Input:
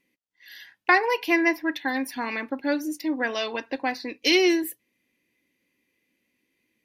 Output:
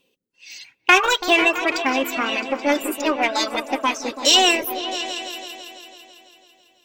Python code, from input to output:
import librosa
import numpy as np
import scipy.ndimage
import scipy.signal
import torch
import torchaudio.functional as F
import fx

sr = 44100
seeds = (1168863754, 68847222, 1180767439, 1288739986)

p1 = fx.dereverb_blind(x, sr, rt60_s=1.8)
p2 = np.clip(p1, -10.0 ** (-24.0 / 20.0), 10.0 ** (-24.0 / 20.0))
p3 = p1 + (p2 * 10.0 ** (-7.5 / 20.0))
p4 = fx.formant_shift(p3, sr, semitones=5)
p5 = fx.echo_opening(p4, sr, ms=166, hz=200, octaves=2, feedback_pct=70, wet_db=-6)
y = p5 * 10.0 ** (4.0 / 20.0)